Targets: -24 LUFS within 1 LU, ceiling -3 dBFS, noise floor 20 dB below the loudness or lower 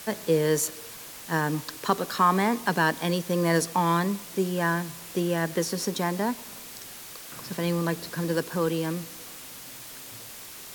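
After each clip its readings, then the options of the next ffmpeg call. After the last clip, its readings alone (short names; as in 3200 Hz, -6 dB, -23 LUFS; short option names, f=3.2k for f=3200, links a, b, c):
noise floor -43 dBFS; noise floor target -47 dBFS; loudness -26.5 LUFS; peak -9.0 dBFS; loudness target -24.0 LUFS
-> -af "afftdn=nr=6:nf=-43"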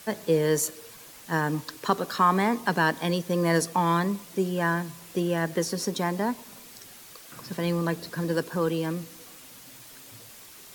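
noise floor -48 dBFS; loudness -27.0 LUFS; peak -9.0 dBFS; loudness target -24.0 LUFS
-> -af "volume=3dB"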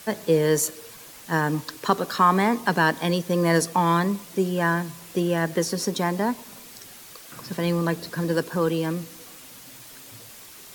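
loudness -24.0 LUFS; peak -6.0 dBFS; noise floor -45 dBFS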